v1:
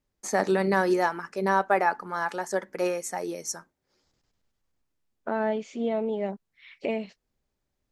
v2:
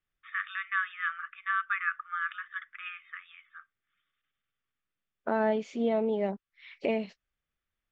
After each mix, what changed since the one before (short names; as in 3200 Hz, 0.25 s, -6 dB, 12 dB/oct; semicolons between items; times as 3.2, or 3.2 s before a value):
first voice: add brick-wall FIR band-pass 1100–3700 Hz; master: add LPF 6000 Hz 12 dB/oct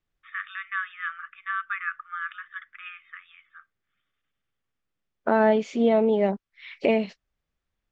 second voice +7.5 dB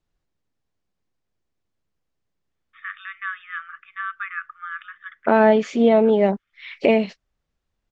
first voice: entry +2.50 s; second voice +5.0 dB